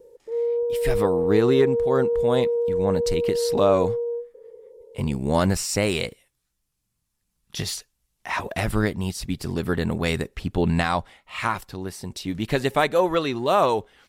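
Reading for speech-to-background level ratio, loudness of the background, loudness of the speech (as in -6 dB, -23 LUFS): 0.0 dB, -24.5 LUFS, -24.5 LUFS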